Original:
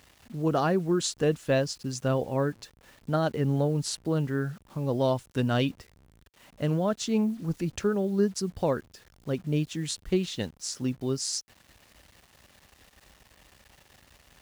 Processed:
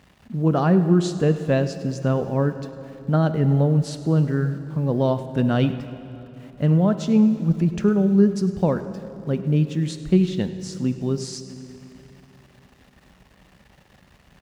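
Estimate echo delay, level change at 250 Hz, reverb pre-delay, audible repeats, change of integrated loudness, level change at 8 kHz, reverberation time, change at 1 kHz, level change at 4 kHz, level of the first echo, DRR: 0.102 s, +9.0 dB, 18 ms, 1, +7.5 dB, n/a, 2.9 s, +3.5 dB, -2.0 dB, -18.0 dB, 10.0 dB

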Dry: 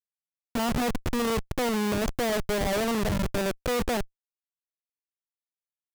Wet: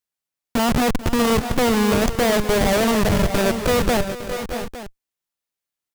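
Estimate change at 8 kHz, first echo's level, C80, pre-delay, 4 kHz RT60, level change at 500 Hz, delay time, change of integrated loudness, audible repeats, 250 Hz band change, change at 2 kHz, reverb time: +9.0 dB, -15.5 dB, none, none, none, +9.0 dB, 0.439 s, +8.0 dB, 3, +9.0 dB, +8.5 dB, none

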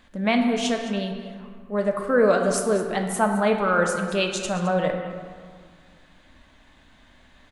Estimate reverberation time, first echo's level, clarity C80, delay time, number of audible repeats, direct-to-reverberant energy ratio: 1.9 s, -15.0 dB, 6.0 dB, 0.214 s, 1, 2.5 dB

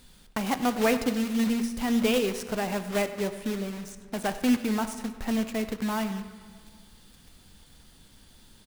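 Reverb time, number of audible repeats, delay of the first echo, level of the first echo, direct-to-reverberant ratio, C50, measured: 1.8 s, 1, 98 ms, -17.0 dB, 9.5 dB, 11.0 dB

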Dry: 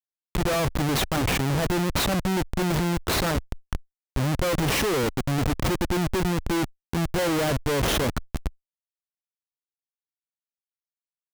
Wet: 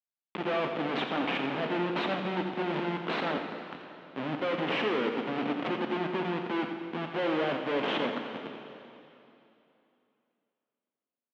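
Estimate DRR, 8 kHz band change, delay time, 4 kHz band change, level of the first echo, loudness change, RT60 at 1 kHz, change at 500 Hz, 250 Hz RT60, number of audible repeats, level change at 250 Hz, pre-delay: 3.5 dB, under -30 dB, 86 ms, -7.5 dB, -9.5 dB, -6.0 dB, 2.9 s, -4.0 dB, 2.9 s, 1, -6.0 dB, 5 ms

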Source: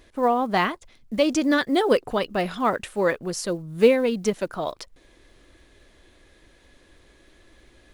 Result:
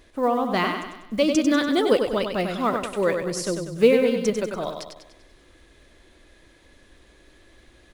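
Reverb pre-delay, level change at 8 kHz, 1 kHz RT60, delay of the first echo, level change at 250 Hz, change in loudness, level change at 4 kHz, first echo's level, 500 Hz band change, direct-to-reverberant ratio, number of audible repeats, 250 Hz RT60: none, +1.0 dB, none, 97 ms, +1.5 dB, +0.5 dB, +1.0 dB, -6.0 dB, +1.0 dB, none, 5, none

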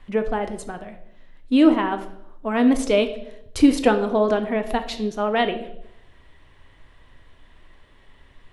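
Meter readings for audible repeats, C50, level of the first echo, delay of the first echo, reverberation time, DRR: none, 11.5 dB, none, none, 0.75 s, 7.5 dB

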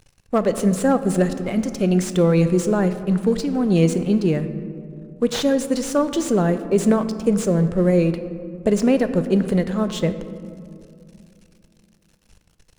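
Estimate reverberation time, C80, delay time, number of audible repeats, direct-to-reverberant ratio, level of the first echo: 2.5 s, 12.5 dB, none, none, 10.0 dB, none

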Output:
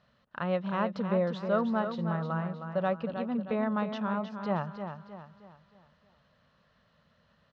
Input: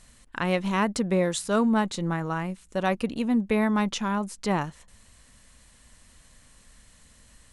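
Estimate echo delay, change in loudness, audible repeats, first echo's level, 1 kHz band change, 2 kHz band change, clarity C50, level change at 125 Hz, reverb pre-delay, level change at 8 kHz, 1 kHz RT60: 0.313 s, -5.0 dB, 4, -8.0 dB, -4.5 dB, -7.5 dB, none, -3.5 dB, none, under -30 dB, none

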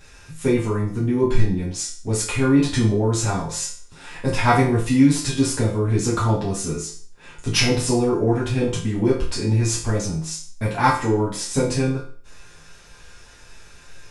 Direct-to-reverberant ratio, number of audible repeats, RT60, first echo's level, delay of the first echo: -8.0 dB, none, 0.45 s, none, none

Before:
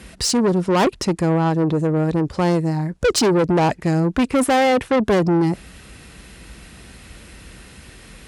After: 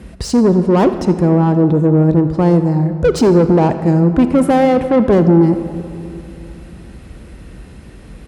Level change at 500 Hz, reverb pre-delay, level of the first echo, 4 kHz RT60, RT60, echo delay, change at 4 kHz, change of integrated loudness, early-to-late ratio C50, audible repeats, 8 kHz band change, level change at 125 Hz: +5.5 dB, 31 ms, -18.5 dB, 1.6 s, 2.7 s, 83 ms, -6.0 dB, +6.0 dB, 10.0 dB, 1, n/a, +7.5 dB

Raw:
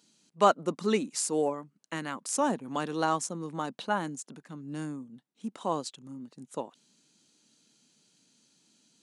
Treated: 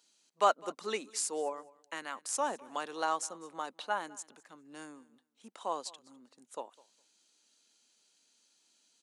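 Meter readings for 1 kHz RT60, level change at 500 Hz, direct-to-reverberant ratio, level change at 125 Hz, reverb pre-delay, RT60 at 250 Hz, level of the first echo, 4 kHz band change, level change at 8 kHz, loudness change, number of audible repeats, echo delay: none, -6.0 dB, none, -22.5 dB, none, none, -22.5 dB, -3.0 dB, -3.0 dB, -4.5 dB, 1, 0.204 s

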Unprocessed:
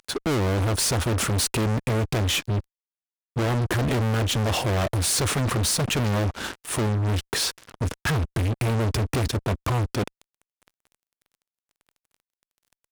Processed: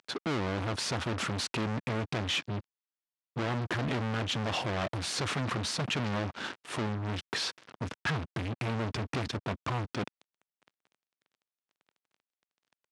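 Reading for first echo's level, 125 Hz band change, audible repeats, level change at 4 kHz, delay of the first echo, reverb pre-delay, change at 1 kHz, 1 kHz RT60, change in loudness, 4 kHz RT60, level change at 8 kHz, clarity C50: none, -11.0 dB, none, -6.5 dB, none, none, -5.5 dB, none, -9.0 dB, none, -14.5 dB, none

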